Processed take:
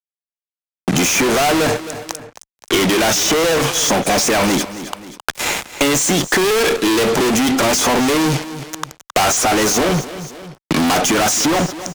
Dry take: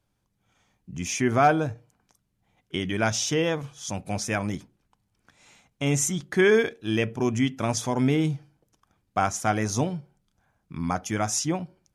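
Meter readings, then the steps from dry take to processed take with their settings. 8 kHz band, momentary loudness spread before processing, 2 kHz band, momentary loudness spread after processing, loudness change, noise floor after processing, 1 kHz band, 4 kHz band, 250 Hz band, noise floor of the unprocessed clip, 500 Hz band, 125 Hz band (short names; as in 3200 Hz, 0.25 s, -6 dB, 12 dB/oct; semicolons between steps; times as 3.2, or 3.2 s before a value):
+13.5 dB, 13 LU, +11.5 dB, 14 LU, +10.0 dB, under -85 dBFS, +10.0 dB, +16.0 dB, +9.5 dB, -75 dBFS, +9.5 dB, +4.0 dB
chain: Chebyshev band-pass 350–8700 Hz, order 2; fuzz box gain 53 dB, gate -57 dBFS; on a send: feedback echo 0.265 s, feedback 28%, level -18 dB; on the sum: three-band squash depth 70%; gain -1 dB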